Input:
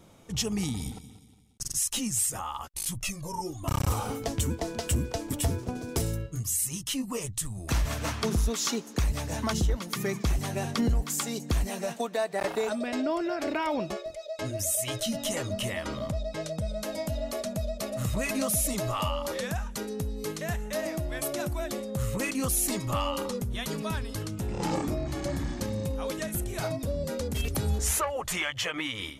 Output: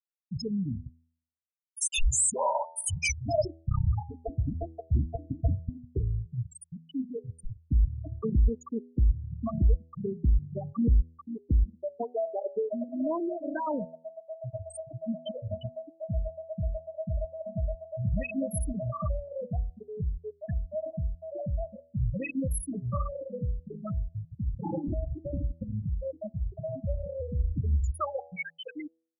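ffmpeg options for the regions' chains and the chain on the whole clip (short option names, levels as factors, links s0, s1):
-filter_complex "[0:a]asettb=1/sr,asplit=3[s0][s1][s2];[s0]atrim=end=1.814[s3];[s1]atrim=start=1.81:end=3.45,asetpts=PTS-STARTPTS,afade=t=in:d=0.004:c=qsin,afade=t=out:st=1.636:d=0.004:c=qsin,highpass=f=390:p=1,aeval=exprs='0.133*sin(PI/2*2.51*val(0)/0.133)':c=same,afreqshift=-270[s4];[s2]atrim=start=3.446[s5];[s3][s4]acrossfade=d=0.004:c1=hsin:c2=qsin[s6];[s6][s5]acrossfade=d=0.004:c1=qsin:c2=hsin,afftfilt=real='re*gte(hypot(re,im),0.178)':imag='im*gte(hypot(re,im),0.178)':win_size=1024:overlap=0.75,lowshelf=f=85:g=6,bandreject=f=81.68:t=h:w=4,bandreject=f=163.36:t=h:w=4,bandreject=f=245.04:t=h:w=4,bandreject=f=326.72:t=h:w=4,bandreject=f=408.4:t=h:w=4,bandreject=f=490.08:t=h:w=4,bandreject=f=571.76:t=h:w=4,bandreject=f=653.44:t=h:w=4,bandreject=f=735.12:t=h:w=4,bandreject=f=816.8:t=h:w=4,bandreject=f=898.48:t=h:w=4"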